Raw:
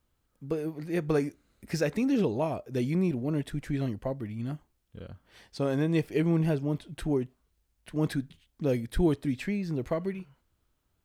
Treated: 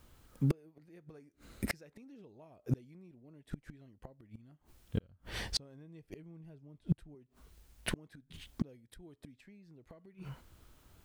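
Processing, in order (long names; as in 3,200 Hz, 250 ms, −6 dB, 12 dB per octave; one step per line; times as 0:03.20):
0:05.03–0:07.15: low-shelf EQ 150 Hz +11.5 dB
downward compressor 2 to 1, threshold −34 dBFS, peak gain reduction 9.5 dB
gate with flip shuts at −32 dBFS, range −36 dB
level +13.5 dB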